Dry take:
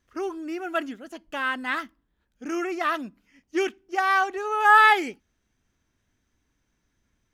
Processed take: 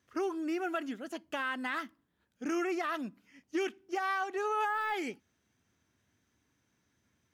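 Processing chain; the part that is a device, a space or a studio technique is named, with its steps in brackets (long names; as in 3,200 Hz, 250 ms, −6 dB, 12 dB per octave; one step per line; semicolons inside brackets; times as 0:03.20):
podcast mastering chain (high-pass filter 81 Hz 24 dB per octave; de-essing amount 70%; downward compressor 4 to 1, threshold −29 dBFS, peak gain reduction 12.5 dB; brickwall limiter −24 dBFS, peak gain reduction 5.5 dB; MP3 112 kbit/s 48,000 Hz)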